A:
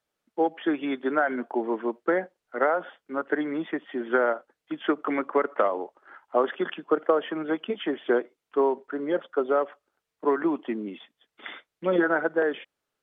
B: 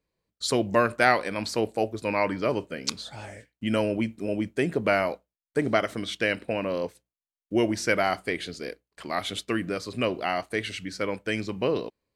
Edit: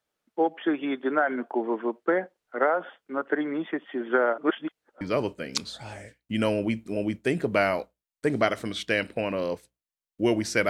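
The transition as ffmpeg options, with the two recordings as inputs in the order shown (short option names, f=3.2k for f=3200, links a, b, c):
-filter_complex "[0:a]apad=whole_dur=10.69,atrim=end=10.69,asplit=2[a][b];[a]atrim=end=4.382[c];[b]atrim=start=4.378:end=5.012,asetpts=PTS-STARTPTS,areverse[d];[1:a]atrim=start=2.328:end=8.01[e];[c][d]acrossfade=d=0.004:c1=hsin:c2=hsin[f];[f][e]acrossfade=d=0.004:c1=hsin:c2=hsin"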